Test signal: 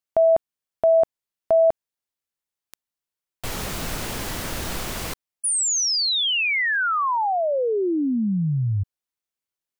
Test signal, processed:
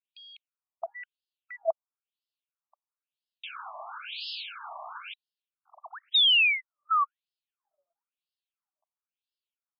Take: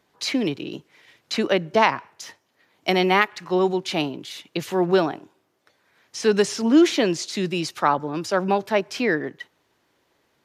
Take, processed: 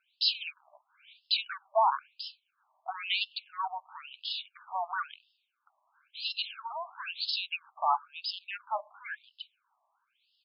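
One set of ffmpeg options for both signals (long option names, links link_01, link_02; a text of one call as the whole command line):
ffmpeg -i in.wav -af "asuperstop=centerf=1900:order=4:qfactor=2.3,tiltshelf=frequency=970:gain=-5,aresample=16000,asoftclip=type=hard:threshold=-16.5dB,aresample=44100,afftfilt=real='re*between(b*sr/1024,830*pow(3800/830,0.5+0.5*sin(2*PI*0.99*pts/sr))/1.41,830*pow(3800/830,0.5+0.5*sin(2*PI*0.99*pts/sr))*1.41)':imag='im*between(b*sr/1024,830*pow(3800/830,0.5+0.5*sin(2*PI*0.99*pts/sr))/1.41,830*pow(3800/830,0.5+0.5*sin(2*PI*0.99*pts/sr))*1.41)':win_size=1024:overlap=0.75,volume=-1.5dB" out.wav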